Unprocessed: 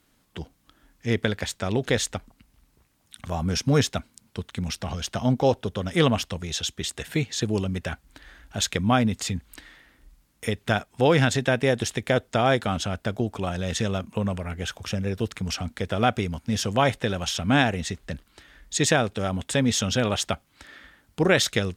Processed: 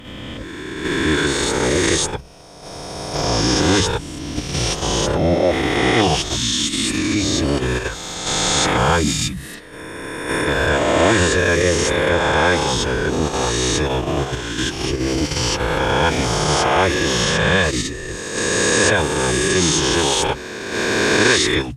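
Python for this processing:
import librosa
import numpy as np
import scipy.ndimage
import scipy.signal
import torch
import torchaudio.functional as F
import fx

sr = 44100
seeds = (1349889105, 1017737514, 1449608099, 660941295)

p1 = fx.spec_swells(x, sr, rise_s=2.36)
p2 = fx.hum_notches(p1, sr, base_hz=50, count=5)
p3 = fx.level_steps(p2, sr, step_db=13)
p4 = p2 + F.gain(torch.from_numpy(p3), 3.0).numpy()
p5 = fx.pitch_keep_formants(p4, sr, semitones=-7.0)
y = F.gain(torch.from_numpy(p5), -1.0).numpy()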